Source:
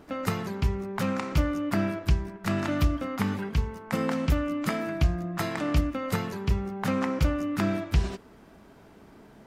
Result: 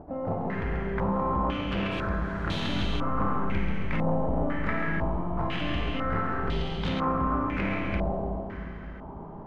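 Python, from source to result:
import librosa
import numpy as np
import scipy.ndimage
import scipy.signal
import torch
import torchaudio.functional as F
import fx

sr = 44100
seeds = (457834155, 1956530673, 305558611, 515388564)

p1 = fx.lower_of_two(x, sr, delay_ms=2.5, at=(6.31, 6.79), fade=0.02)
p2 = fx.low_shelf(p1, sr, hz=150.0, db=11.5)
p3 = fx.level_steps(p2, sr, step_db=24)
p4 = p2 + F.gain(torch.from_numpy(p3), -2.0).numpy()
p5 = fx.quant_dither(p4, sr, seeds[0], bits=6, dither='triangular', at=(1.9, 2.59), fade=0.02)
p6 = 10.0 ** (-25.0 / 20.0) * np.tanh(p5 / 10.0 ** (-25.0 / 20.0))
p7 = fx.comb_fb(p6, sr, f0_hz=81.0, decay_s=1.8, harmonics='all', damping=0.0, mix_pct=80)
p8 = p7 + fx.echo_split(p7, sr, split_hz=390.0, low_ms=295, high_ms=136, feedback_pct=52, wet_db=-6.5, dry=0)
p9 = fx.rev_schroeder(p8, sr, rt60_s=3.5, comb_ms=38, drr_db=1.5)
p10 = fx.filter_held_lowpass(p9, sr, hz=2.0, low_hz=760.0, high_hz=3600.0)
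y = F.gain(torch.from_numpy(p10), 8.5).numpy()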